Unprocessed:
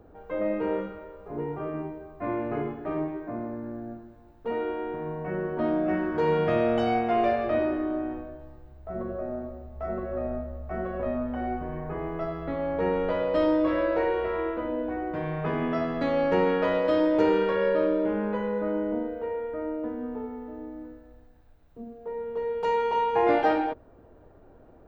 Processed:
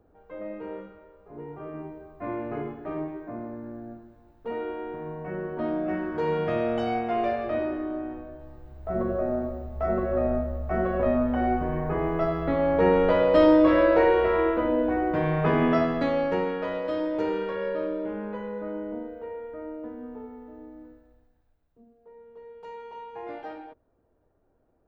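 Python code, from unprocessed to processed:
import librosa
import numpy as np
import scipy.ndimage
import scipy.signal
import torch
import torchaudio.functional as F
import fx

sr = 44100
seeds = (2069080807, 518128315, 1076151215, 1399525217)

y = fx.gain(x, sr, db=fx.line((1.28, -9.0), (1.99, -2.5), (8.16, -2.5), (8.92, 6.0), (15.73, 6.0), (16.53, -5.5), (20.91, -5.5), (21.89, -16.0)))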